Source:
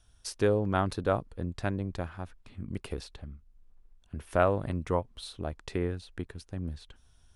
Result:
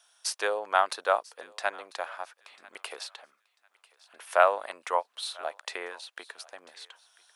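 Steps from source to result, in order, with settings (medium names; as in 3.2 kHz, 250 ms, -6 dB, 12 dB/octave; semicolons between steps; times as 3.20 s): high-pass 660 Hz 24 dB/octave; on a send: thinning echo 994 ms, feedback 25%, high-pass 1.1 kHz, level -20 dB; on the sum: trim +7.5 dB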